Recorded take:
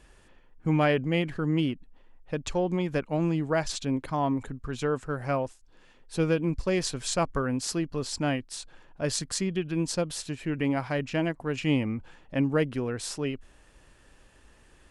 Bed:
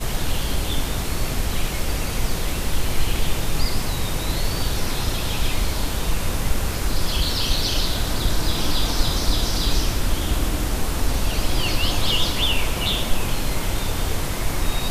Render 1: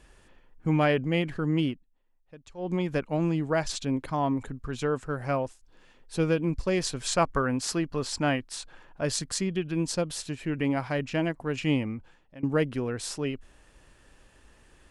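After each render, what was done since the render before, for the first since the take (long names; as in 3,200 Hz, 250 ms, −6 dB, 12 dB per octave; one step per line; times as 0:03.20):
0:01.68–0:02.72: duck −17.5 dB, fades 0.15 s
0:07.05–0:09.04: parametric band 1,300 Hz +4.5 dB 2.3 octaves
0:11.68–0:12.43: fade out, to −23 dB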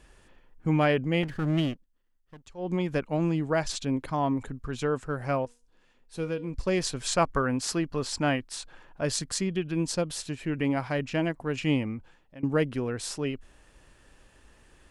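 0:01.23–0:02.47: lower of the sound and its delayed copy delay 0.63 ms
0:05.45–0:06.54: tuned comb filter 240 Hz, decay 0.41 s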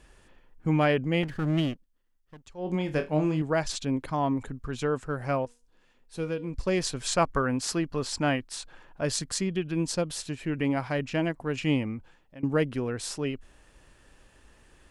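0:02.64–0:03.42: flutter between parallel walls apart 4.5 metres, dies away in 0.22 s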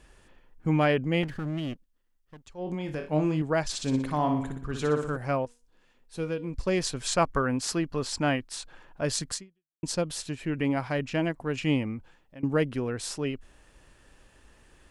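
0:01.32–0:03.09: downward compressor, threshold −28 dBFS
0:03.71–0:05.17: flutter between parallel walls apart 10.3 metres, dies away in 0.59 s
0:09.34–0:09.83: fade out exponential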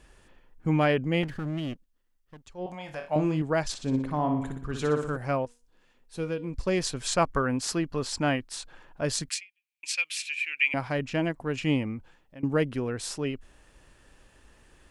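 0:02.66–0:03.16: low shelf with overshoot 510 Hz −8.5 dB, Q 3
0:03.74–0:04.42: high-shelf EQ 2,100 Hz −10.5 dB
0:09.29–0:10.74: high-pass with resonance 2,400 Hz, resonance Q 10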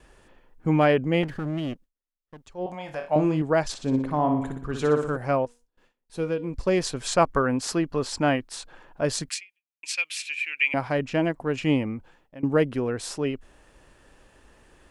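parametric band 570 Hz +5 dB 2.9 octaves
noise gate with hold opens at −52 dBFS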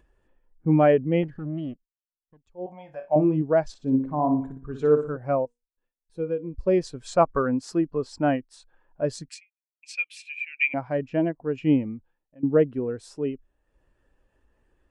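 upward compression, threshold −43 dBFS
every bin expanded away from the loudest bin 1.5 to 1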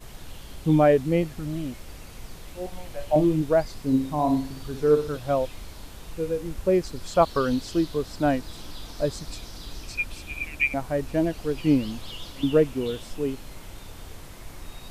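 mix in bed −18 dB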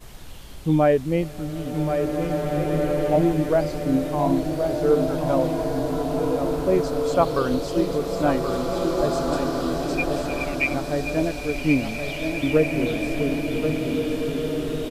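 on a send: single-tap delay 1,077 ms −7.5 dB
on the sum: slow-attack reverb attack 2,100 ms, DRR 1 dB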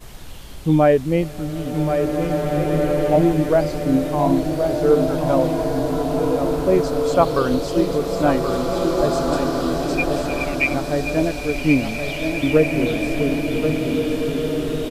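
level +3.5 dB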